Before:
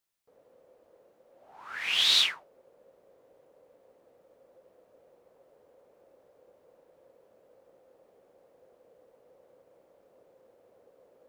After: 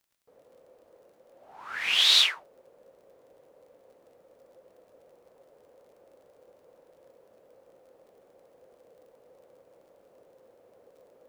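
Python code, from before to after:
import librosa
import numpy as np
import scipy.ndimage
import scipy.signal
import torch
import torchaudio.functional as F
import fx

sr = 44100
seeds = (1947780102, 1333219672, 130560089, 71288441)

y = fx.highpass(x, sr, hz=350.0, slope=24, at=(1.95, 2.37))
y = fx.dmg_crackle(y, sr, seeds[0], per_s=37.0, level_db=-57.0)
y = y * 10.0 ** (3.0 / 20.0)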